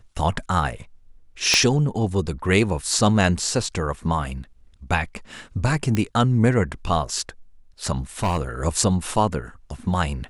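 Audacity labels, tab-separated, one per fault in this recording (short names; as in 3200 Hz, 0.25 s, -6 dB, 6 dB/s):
1.540000	1.540000	pop -3 dBFS
5.950000	5.950000	pop -10 dBFS
8.230000	8.420000	clipped -17 dBFS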